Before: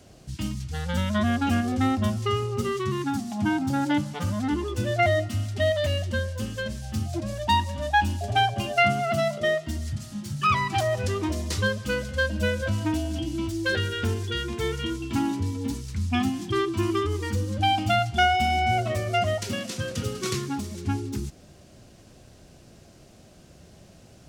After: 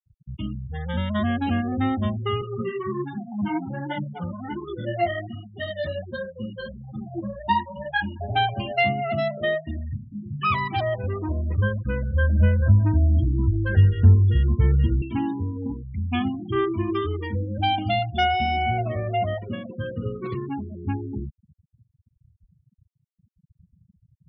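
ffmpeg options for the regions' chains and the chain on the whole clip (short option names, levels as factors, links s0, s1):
-filter_complex "[0:a]asettb=1/sr,asplit=3[s0][s1][s2];[s0]atrim=end=2.414[s3];[s1]atrim=start=2.41:end=8.2,asetpts=PTS-STARTPTS,afade=t=in:d=0.004:c=qsin,afade=t=out:st=5.786:d=0.004:c=qsin,aecho=1:1:5.5:0.64,atrim=end_sample=255339,flanger=delay=4.9:depth=8:regen=3:speed=1.3:shape=triangular[s4];[s2]atrim=start=8.196[s5];[s3][s4]acrossfade=d=0.004:c1=hsin:c2=qsin[s6];[s6][s5]acrossfade=d=0.004:c1=qsin:c2=hsin,asettb=1/sr,asplit=3[s7][s8][s9];[s7]atrim=end=10.944[s10];[s8]atrim=start=10.94:end=15.02,asetpts=PTS-STARTPTS,afade=t=in:d=0.004:c=qsin,afade=t=out:st=4.076:d=0.004:c=qsin,lowpass=1800,asubboost=boost=10.5:cutoff=150,aeval=exprs='sgn(val(0))*max(abs(val(0))-0.00841,0)':c=same[s11];[s9]atrim=start=15.016[s12];[s10][s11]acrossfade=d=0.004:c1=hsin:c2=qsin[s13];[s13][s12]acrossfade=d=0.004:c1=qsin:c2=hsin,asettb=1/sr,asplit=3[s14][s15][s16];[s14]atrim=end=16.314[s17];[s15]atrim=start=16.31:end=16.93,asetpts=PTS-STARTPTS,afade=t=in:d=0.004:c=qsin,afade=t=out:st=0.616:d=0.004:c=qsin,highshelf=f=3400:g=-10,asplit=2[s18][s19];[s19]adelay=33,volume=0.422[s20];[s18][s20]amix=inputs=2:normalize=0,atrim=end_sample=27342[s21];[s16]atrim=start=16.926[s22];[s17][s21]acrossfade=d=0.004:c1=hsin:c2=qsin[s23];[s23][s22]acrossfade=d=0.004:c1=qsin:c2=hsin,asettb=1/sr,asplit=3[s24][s25][s26];[s24]atrim=end=18.704[s27];[s25]atrim=start=18.7:end=20.5,asetpts=PTS-STARTPTS,afade=t=in:d=0.004:c=qsin,afade=t=out:st=1.796:d=0.004:c=qsin,lowpass=f=1700:p=1,asplit=2[s28][s29];[s29]adelay=17,volume=0.299[s30];[s28][s30]amix=inputs=2:normalize=0,atrim=end_sample=79380[s31];[s26]atrim=start=20.496[s32];[s27][s31]acrossfade=d=0.004:c1=hsin:c2=qsin[s33];[s33][s32]acrossfade=d=0.004:c1=qsin:c2=hsin,lowpass=4500,afftfilt=real='re*gte(hypot(re,im),0.0251)':imag='im*gte(hypot(re,im),0.0251)':win_size=1024:overlap=0.75,bandreject=f=1400:w=8.8"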